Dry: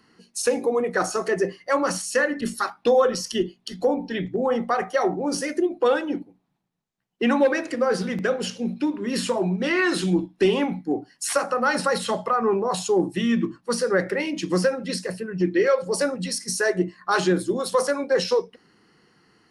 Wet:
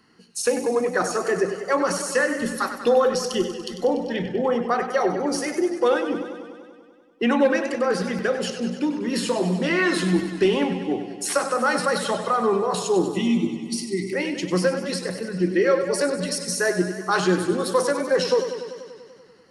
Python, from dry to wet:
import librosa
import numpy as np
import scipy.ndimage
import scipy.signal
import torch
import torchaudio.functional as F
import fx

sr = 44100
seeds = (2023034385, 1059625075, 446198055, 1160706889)

y = fx.spec_erase(x, sr, start_s=13.09, length_s=1.05, low_hz=400.0, high_hz=1900.0)
y = fx.echo_warbled(y, sr, ms=97, feedback_pct=71, rate_hz=2.8, cents=71, wet_db=-10)